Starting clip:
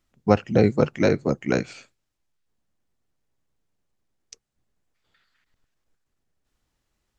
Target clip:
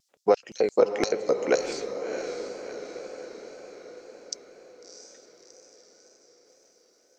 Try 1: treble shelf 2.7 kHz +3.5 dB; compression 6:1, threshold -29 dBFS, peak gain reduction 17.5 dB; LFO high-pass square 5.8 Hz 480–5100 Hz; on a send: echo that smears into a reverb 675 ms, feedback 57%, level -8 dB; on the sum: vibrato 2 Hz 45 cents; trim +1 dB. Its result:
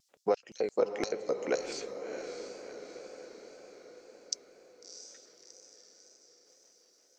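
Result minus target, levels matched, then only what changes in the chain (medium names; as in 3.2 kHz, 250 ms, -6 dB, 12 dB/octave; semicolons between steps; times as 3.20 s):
compression: peak gain reduction +8 dB
change: compression 6:1, threshold -19.5 dBFS, peak gain reduction 9.5 dB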